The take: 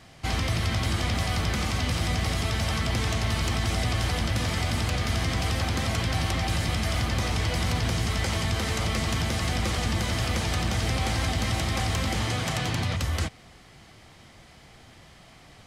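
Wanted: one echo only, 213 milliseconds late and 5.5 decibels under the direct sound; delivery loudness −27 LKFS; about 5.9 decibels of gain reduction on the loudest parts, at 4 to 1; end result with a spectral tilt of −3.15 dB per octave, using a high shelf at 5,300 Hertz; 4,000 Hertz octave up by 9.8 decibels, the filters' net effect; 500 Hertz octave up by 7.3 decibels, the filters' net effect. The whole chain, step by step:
parametric band 500 Hz +9 dB
parametric band 4,000 Hz +9 dB
high-shelf EQ 5,300 Hz +8 dB
downward compressor 4 to 1, threshold −26 dBFS
single-tap delay 213 ms −5.5 dB
level −0.5 dB

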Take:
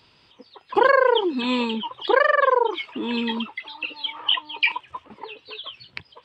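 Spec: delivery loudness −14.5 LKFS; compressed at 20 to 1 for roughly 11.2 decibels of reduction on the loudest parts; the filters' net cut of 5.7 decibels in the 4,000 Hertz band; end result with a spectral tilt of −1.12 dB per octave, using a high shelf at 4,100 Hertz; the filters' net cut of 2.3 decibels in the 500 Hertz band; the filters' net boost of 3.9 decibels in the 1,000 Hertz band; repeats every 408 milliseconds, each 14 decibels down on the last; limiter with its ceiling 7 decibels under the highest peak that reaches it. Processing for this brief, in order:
parametric band 500 Hz −3.5 dB
parametric band 1,000 Hz +5.5 dB
parametric band 4,000 Hz −5.5 dB
high-shelf EQ 4,100 Hz −6.5 dB
downward compressor 20 to 1, threshold −22 dBFS
brickwall limiter −21 dBFS
repeating echo 408 ms, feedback 20%, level −14 dB
level +17 dB

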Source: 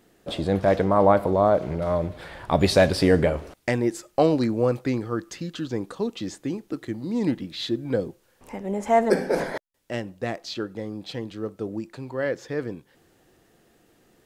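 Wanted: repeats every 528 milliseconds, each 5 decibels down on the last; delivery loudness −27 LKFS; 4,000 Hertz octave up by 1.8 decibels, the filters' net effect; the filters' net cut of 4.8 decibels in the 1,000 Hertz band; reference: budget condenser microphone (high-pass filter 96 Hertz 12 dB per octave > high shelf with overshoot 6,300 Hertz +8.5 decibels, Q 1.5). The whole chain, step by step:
high-pass filter 96 Hz 12 dB per octave
parametric band 1,000 Hz −7.5 dB
parametric band 4,000 Hz +4.5 dB
high shelf with overshoot 6,300 Hz +8.5 dB, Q 1.5
repeating echo 528 ms, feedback 56%, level −5 dB
level −2 dB

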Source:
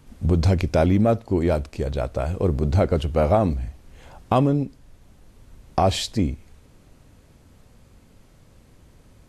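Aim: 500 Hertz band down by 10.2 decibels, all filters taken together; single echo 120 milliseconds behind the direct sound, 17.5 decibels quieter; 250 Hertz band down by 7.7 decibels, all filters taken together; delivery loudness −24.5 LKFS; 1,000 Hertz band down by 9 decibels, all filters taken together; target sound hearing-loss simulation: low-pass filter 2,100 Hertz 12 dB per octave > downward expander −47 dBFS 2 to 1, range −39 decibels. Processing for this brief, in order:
low-pass filter 2,100 Hz 12 dB per octave
parametric band 250 Hz −8 dB
parametric band 500 Hz −8.5 dB
parametric band 1,000 Hz −8 dB
single-tap delay 120 ms −17.5 dB
downward expander −47 dBFS 2 to 1, range −39 dB
level +2.5 dB

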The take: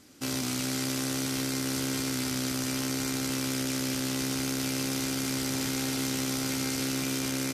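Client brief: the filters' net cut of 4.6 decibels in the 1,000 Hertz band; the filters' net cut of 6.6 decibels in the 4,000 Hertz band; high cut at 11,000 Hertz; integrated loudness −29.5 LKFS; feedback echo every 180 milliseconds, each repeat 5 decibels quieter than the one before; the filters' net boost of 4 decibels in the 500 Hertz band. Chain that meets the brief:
low-pass filter 11,000 Hz
parametric band 500 Hz +7 dB
parametric band 1,000 Hz −8.5 dB
parametric band 4,000 Hz −8.5 dB
repeating echo 180 ms, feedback 56%, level −5 dB
level +1 dB

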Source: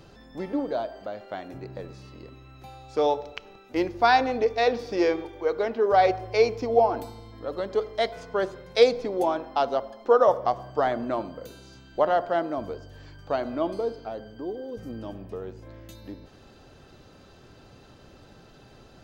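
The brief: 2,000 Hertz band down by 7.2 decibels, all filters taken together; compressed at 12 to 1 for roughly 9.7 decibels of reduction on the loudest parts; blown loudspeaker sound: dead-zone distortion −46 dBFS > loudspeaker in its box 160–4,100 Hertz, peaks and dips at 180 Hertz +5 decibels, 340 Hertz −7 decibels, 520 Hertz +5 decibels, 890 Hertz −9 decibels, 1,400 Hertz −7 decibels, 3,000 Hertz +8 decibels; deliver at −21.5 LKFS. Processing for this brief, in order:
parametric band 2,000 Hz −7.5 dB
downward compressor 12 to 1, threshold −23 dBFS
dead-zone distortion −46 dBFS
loudspeaker in its box 160–4,100 Hz, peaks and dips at 180 Hz +5 dB, 340 Hz −7 dB, 520 Hz +5 dB, 890 Hz −9 dB, 1,400 Hz −7 dB, 3,000 Hz +8 dB
level +10.5 dB

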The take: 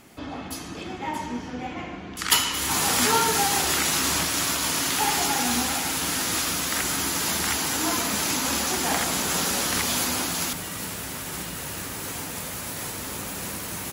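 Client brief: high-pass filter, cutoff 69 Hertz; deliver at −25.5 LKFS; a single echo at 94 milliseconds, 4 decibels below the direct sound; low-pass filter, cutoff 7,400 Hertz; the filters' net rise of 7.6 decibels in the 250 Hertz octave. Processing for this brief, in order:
high-pass filter 69 Hz
low-pass filter 7,400 Hz
parametric band 250 Hz +9 dB
single-tap delay 94 ms −4 dB
level −2.5 dB

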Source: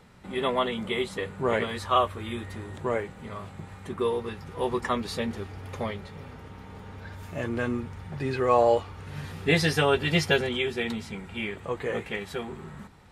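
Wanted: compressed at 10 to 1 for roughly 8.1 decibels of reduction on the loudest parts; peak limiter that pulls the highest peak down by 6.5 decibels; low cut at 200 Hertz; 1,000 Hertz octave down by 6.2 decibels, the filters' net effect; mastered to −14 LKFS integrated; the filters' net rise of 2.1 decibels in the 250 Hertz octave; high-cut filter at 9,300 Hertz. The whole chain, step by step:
high-pass filter 200 Hz
low-pass filter 9,300 Hz
parametric band 250 Hz +5.5 dB
parametric band 1,000 Hz −8.5 dB
downward compressor 10 to 1, threshold −26 dBFS
level +20.5 dB
brickwall limiter −2.5 dBFS

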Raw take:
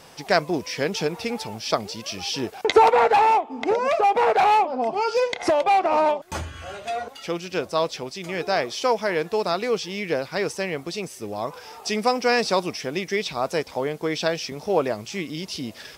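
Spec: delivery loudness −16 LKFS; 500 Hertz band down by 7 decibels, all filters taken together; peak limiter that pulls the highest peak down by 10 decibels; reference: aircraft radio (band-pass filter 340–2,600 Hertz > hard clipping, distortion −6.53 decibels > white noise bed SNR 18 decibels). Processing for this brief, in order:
parametric band 500 Hz −7.5 dB
brickwall limiter −16 dBFS
band-pass filter 340–2,600 Hz
hard clipping −28 dBFS
white noise bed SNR 18 dB
level +17.5 dB

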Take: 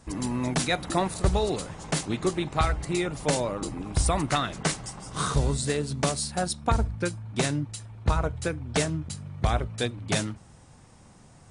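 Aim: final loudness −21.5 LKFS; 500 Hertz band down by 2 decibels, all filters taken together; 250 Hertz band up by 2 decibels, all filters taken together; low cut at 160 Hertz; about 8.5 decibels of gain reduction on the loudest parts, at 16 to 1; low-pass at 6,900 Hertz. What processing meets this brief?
high-pass filter 160 Hz
low-pass filter 6,900 Hz
parametric band 250 Hz +5.5 dB
parametric band 500 Hz −4.5 dB
downward compressor 16 to 1, threshold −29 dBFS
level +14 dB

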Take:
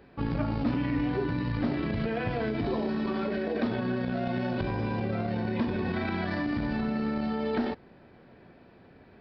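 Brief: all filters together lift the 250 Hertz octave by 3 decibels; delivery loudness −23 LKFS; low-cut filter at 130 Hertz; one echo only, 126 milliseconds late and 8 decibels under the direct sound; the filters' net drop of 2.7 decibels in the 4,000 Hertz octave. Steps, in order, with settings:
high-pass filter 130 Hz
parametric band 250 Hz +4 dB
parametric band 4,000 Hz −3.5 dB
single-tap delay 126 ms −8 dB
level +4.5 dB

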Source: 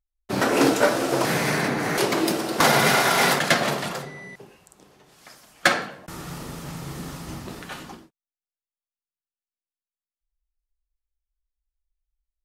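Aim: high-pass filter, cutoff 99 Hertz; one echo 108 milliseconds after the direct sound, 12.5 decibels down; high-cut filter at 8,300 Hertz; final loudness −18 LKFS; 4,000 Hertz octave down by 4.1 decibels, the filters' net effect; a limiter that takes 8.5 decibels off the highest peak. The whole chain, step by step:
high-pass filter 99 Hz
low-pass filter 8,300 Hz
parametric band 4,000 Hz −5 dB
brickwall limiter −12 dBFS
single-tap delay 108 ms −12.5 dB
level +6 dB

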